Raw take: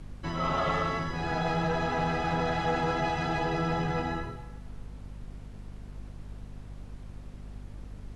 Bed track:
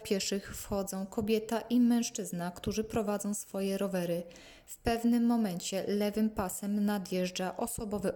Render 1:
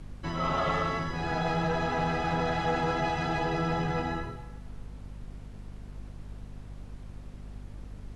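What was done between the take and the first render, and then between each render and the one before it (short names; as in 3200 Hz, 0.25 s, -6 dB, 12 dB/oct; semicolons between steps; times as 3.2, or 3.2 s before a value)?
nothing audible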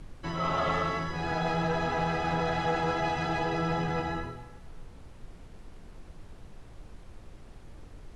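notches 50/100/150/200/250 Hz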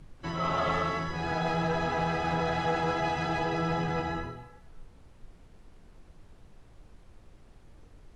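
noise print and reduce 6 dB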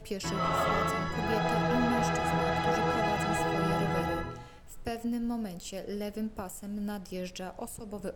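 add bed track -5 dB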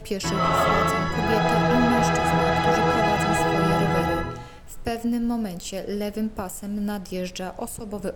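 gain +8 dB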